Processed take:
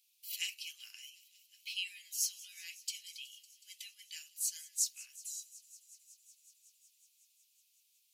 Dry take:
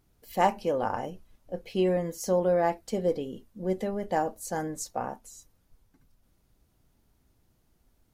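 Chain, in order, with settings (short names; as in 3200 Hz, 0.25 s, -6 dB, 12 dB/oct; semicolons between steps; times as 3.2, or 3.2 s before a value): Chebyshev high-pass 2500 Hz, order 5; thin delay 0.185 s, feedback 82%, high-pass 4000 Hz, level -19 dB; gain +6 dB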